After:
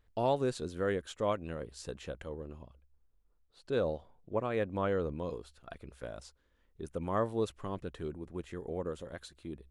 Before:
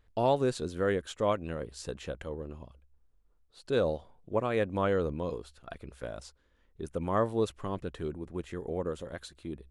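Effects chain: 2.62–5.1 high shelf 4700 Hz -6.5 dB; gain -3.5 dB

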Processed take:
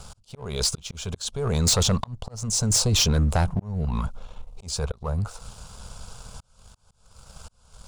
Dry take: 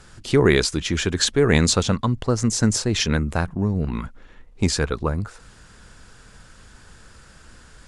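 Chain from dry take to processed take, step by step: in parallel at +3 dB: negative-ratio compressor -21 dBFS, ratio -0.5; on the sum: auto swell 0.545 s; fixed phaser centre 760 Hz, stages 4; sample leveller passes 1; soft clip -10.5 dBFS, distortion -16 dB; gain -4 dB

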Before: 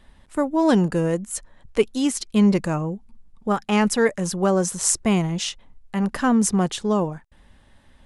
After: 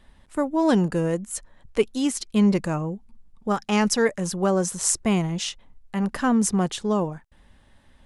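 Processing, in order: 3.49–4.02 bell 5600 Hz +7.5 dB 0.67 oct; gain -2 dB

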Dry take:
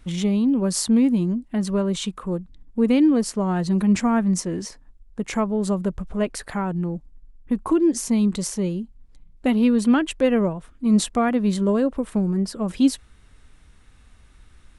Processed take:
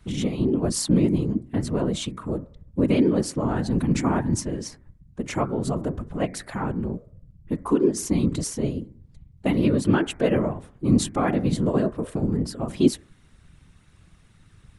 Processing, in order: de-hum 100.8 Hz, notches 23; whisperiser; gain -2 dB

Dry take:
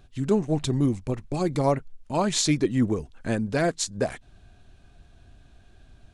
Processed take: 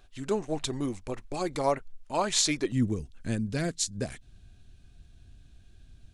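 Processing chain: bell 140 Hz -13 dB 2.5 oct, from 2.72 s 820 Hz

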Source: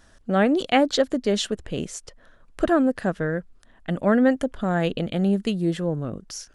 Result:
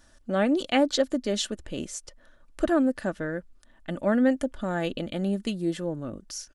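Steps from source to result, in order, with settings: tone controls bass 0 dB, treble +4 dB; comb 3.4 ms, depth 39%; gain -5 dB

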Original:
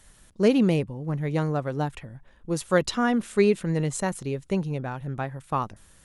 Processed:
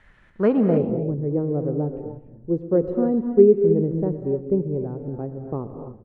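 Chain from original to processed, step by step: feedback echo 0.12 s, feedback 46%, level -18 dB; low-pass sweep 2000 Hz -> 410 Hz, 0.29–0.9; non-linear reverb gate 0.32 s rising, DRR 6 dB

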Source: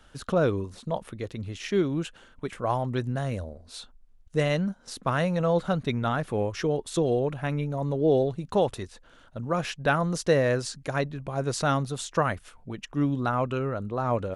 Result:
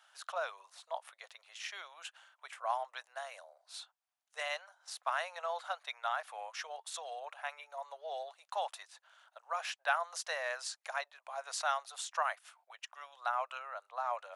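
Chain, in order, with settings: steep high-pass 670 Hz 48 dB/oct; gain -5.5 dB

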